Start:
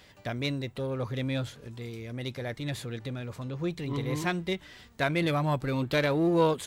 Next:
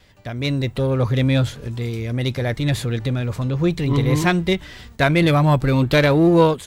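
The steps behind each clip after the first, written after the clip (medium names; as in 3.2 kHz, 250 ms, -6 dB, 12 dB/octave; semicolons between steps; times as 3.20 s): gate with hold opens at -47 dBFS; bass shelf 99 Hz +11 dB; level rider gain up to 11 dB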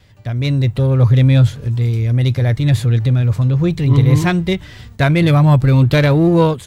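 peaking EQ 110 Hz +11.5 dB 1 oct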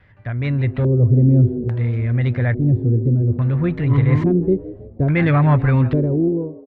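fade out at the end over 0.93 s; frequency-shifting echo 162 ms, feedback 44%, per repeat +120 Hz, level -17 dB; LFO low-pass square 0.59 Hz 370–1800 Hz; trim -4 dB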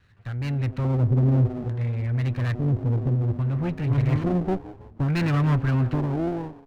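comb filter that takes the minimum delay 0.71 ms; trim -6.5 dB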